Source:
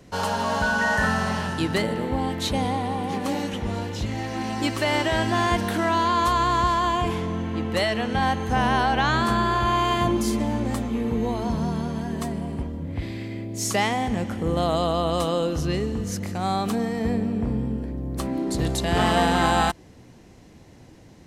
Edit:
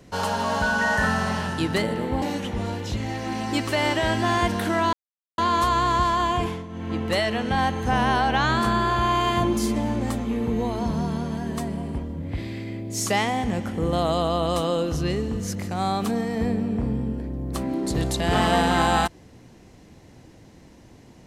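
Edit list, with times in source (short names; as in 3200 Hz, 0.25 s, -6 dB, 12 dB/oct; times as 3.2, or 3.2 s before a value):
2.22–3.31 cut
6.02 insert silence 0.45 s
7.06–7.58 dip -11 dB, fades 0.25 s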